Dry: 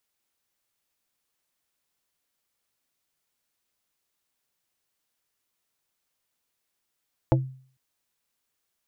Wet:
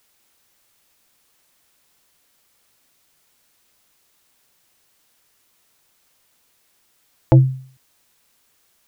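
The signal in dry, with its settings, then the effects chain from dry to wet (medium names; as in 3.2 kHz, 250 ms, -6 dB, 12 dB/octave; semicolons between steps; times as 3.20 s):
wood hit plate, lowest mode 131 Hz, modes 5, decay 0.48 s, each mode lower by 1.5 dB, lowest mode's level -15.5 dB
loudness maximiser +17 dB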